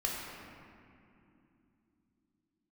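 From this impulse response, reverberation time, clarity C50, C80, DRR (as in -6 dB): 2.8 s, -0.5 dB, 1.0 dB, -3.5 dB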